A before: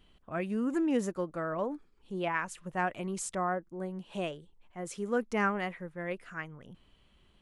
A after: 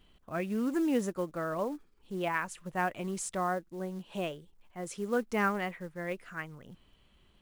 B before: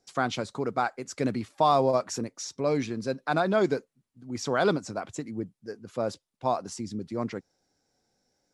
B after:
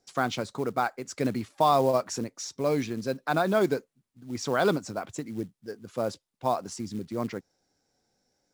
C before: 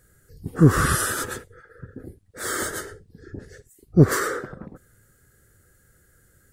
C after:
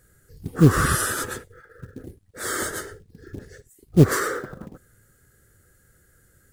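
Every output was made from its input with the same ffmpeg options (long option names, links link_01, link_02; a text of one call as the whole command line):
ffmpeg -i in.wav -af "acrusher=bits=6:mode=log:mix=0:aa=0.000001" out.wav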